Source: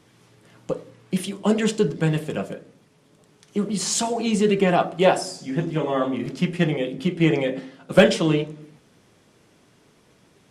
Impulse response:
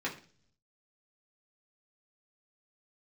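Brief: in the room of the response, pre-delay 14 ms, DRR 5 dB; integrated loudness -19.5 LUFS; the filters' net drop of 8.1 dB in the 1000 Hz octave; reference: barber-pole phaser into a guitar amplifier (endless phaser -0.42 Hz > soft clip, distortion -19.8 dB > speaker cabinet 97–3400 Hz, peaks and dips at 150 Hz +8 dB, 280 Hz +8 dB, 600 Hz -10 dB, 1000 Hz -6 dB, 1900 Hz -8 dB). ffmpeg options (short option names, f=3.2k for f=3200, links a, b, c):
-filter_complex "[0:a]equalizer=f=1k:t=o:g=-6.5,asplit=2[a][b];[1:a]atrim=start_sample=2205,adelay=14[c];[b][c]afir=irnorm=-1:irlink=0,volume=-10.5dB[d];[a][d]amix=inputs=2:normalize=0,asplit=2[e][f];[f]afreqshift=-0.42[g];[e][g]amix=inputs=2:normalize=1,asoftclip=threshold=-12dB,highpass=97,equalizer=f=150:t=q:w=4:g=8,equalizer=f=280:t=q:w=4:g=8,equalizer=f=600:t=q:w=4:g=-10,equalizer=f=1k:t=q:w=4:g=-6,equalizer=f=1.9k:t=q:w=4:g=-8,lowpass=f=3.4k:w=0.5412,lowpass=f=3.4k:w=1.3066,volume=5dB"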